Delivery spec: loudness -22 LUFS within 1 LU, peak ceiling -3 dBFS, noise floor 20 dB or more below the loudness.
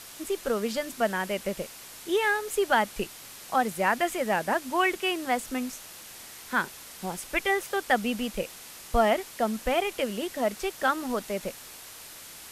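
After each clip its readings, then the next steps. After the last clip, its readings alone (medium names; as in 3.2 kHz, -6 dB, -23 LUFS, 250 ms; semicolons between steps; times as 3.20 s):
noise floor -46 dBFS; noise floor target -49 dBFS; loudness -28.5 LUFS; peak level -10.5 dBFS; loudness target -22.0 LUFS
-> noise reduction 6 dB, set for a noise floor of -46 dBFS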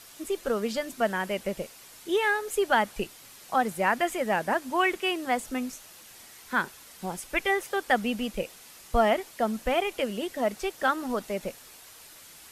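noise floor -50 dBFS; loudness -28.5 LUFS; peak level -10.5 dBFS; loudness target -22.0 LUFS
-> trim +6.5 dB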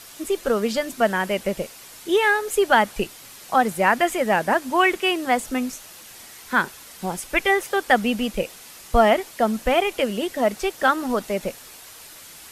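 loudness -22.0 LUFS; peak level -4.0 dBFS; noise floor -44 dBFS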